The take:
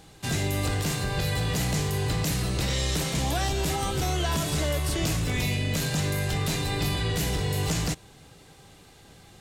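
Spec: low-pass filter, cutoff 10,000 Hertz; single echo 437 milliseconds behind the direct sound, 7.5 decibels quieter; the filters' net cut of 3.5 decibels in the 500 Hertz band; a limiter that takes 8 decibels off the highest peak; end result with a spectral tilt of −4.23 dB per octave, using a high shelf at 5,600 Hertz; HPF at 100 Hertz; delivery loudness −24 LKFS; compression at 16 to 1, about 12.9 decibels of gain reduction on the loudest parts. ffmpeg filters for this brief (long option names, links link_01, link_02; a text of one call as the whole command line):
ffmpeg -i in.wav -af "highpass=100,lowpass=10000,equalizer=frequency=500:width_type=o:gain=-4.5,highshelf=frequency=5600:gain=-3.5,acompressor=threshold=-38dB:ratio=16,alimiter=level_in=11.5dB:limit=-24dB:level=0:latency=1,volume=-11.5dB,aecho=1:1:437:0.422,volume=20.5dB" out.wav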